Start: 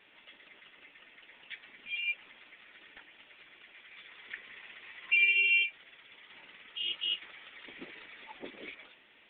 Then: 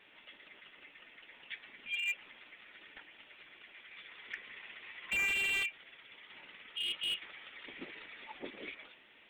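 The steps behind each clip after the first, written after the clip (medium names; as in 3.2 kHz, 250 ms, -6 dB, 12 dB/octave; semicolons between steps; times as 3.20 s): slew-rate limiter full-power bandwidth 71 Hz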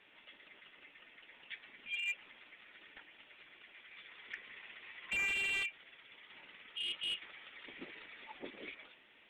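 Bessel low-pass 9.1 kHz, order 2; trim -2.5 dB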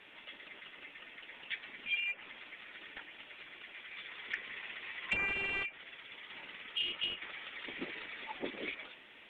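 low-pass that closes with the level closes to 1.6 kHz, closed at -34.5 dBFS; trim +7.5 dB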